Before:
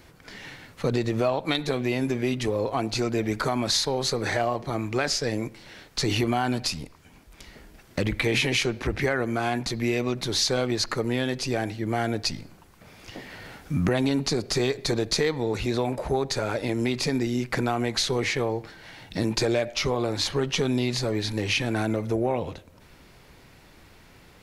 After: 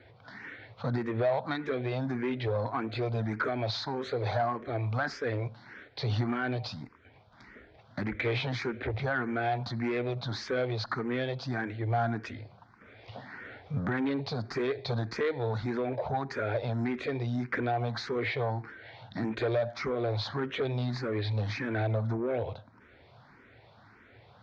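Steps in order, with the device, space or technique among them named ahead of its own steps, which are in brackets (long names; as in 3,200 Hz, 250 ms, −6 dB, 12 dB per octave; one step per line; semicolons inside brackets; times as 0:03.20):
barber-pole phaser into a guitar amplifier (frequency shifter mixed with the dry sound +1.7 Hz; soft clipping −23 dBFS, distortion −15 dB; loudspeaker in its box 100–3,700 Hz, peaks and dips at 110 Hz +8 dB, 170 Hz −8 dB, 330 Hz −4 dB, 690 Hz +3 dB, 1,500 Hz +4 dB, 2,800 Hz −9 dB)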